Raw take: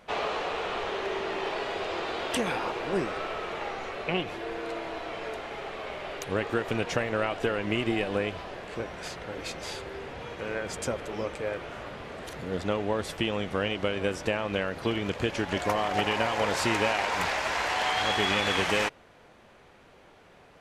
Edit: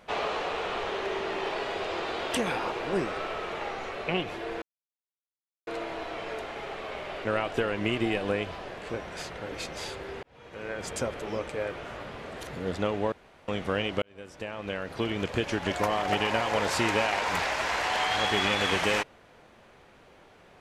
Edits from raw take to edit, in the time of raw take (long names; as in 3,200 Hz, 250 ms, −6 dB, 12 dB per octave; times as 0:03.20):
0:04.62: splice in silence 1.05 s
0:06.20–0:07.11: remove
0:10.09–0:10.77: fade in
0:12.98–0:13.34: fill with room tone
0:13.88–0:15.08: fade in